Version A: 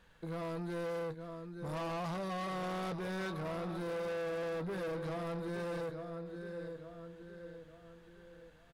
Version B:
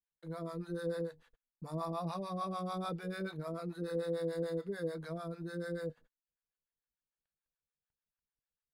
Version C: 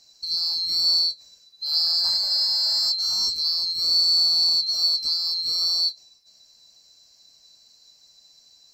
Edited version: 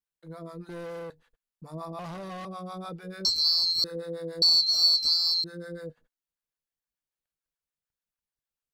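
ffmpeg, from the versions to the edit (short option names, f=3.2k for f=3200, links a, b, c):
-filter_complex "[0:a]asplit=2[a][b];[2:a]asplit=2[c][d];[1:a]asplit=5[e][f][g][h][i];[e]atrim=end=0.692[j];[a]atrim=start=0.688:end=1.102[k];[f]atrim=start=1.098:end=1.992[l];[b]atrim=start=1.988:end=2.452[m];[g]atrim=start=2.448:end=3.252[n];[c]atrim=start=3.248:end=3.842[o];[h]atrim=start=3.838:end=4.422[p];[d]atrim=start=4.418:end=5.442[q];[i]atrim=start=5.438[r];[j][k]acrossfade=d=0.004:c1=hsin:c2=hsin[s];[s][l]acrossfade=d=0.004:c1=hsin:c2=hsin[t];[t][m]acrossfade=d=0.004:c1=hsin:c2=hsin[u];[u][n]acrossfade=d=0.004:c1=hsin:c2=hsin[v];[v][o]acrossfade=d=0.004:c1=hsin:c2=hsin[w];[w][p]acrossfade=d=0.004:c1=hsin:c2=hsin[x];[x][q]acrossfade=d=0.004:c1=hsin:c2=hsin[y];[y][r]acrossfade=d=0.004:c1=hsin:c2=hsin"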